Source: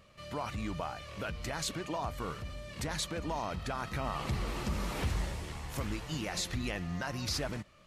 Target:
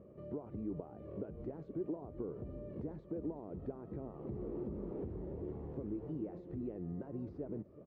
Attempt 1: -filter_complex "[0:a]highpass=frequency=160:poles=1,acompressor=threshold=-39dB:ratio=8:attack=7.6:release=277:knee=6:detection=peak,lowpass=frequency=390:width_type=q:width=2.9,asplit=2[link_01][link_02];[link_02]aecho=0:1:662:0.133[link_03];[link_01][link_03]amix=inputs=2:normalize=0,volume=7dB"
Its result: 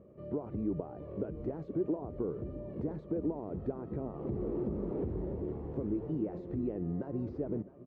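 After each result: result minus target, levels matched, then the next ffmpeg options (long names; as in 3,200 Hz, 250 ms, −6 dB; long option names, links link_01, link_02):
echo 286 ms late; downward compressor: peak gain reduction −7 dB
-filter_complex "[0:a]highpass=frequency=160:poles=1,acompressor=threshold=-39dB:ratio=8:attack=7.6:release=277:knee=6:detection=peak,lowpass=frequency=390:width_type=q:width=2.9,asplit=2[link_01][link_02];[link_02]aecho=0:1:376:0.133[link_03];[link_01][link_03]amix=inputs=2:normalize=0,volume=7dB"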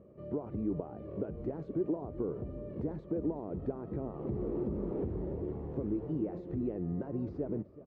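downward compressor: peak gain reduction −7 dB
-filter_complex "[0:a]highpass=frequency=160:poles=1,acompressor=threshold=-47dB:ratio=8:attack=7.6:release=277:knee=6:detection=peak,lowpass=frequency=390:width_type=q:width=2.9,asplit=2[link_01][link_02];[link_02]aecho=0:1:376:0.133[link_03];[link_01][link_03]amix=inputs=2:normalize=0,volume=7dB"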